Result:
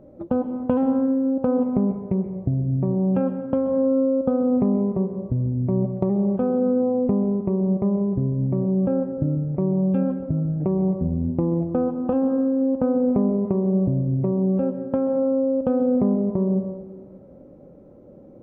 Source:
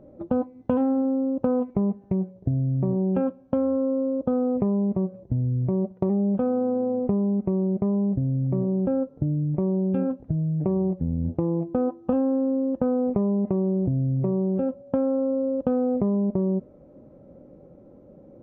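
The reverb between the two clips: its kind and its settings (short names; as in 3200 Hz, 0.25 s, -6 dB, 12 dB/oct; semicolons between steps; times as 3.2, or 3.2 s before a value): plate-style reverb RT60 1.4 s, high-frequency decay 0.45×, pre-delay 0.115 s, DRR 8 dB; gain +1.5 dB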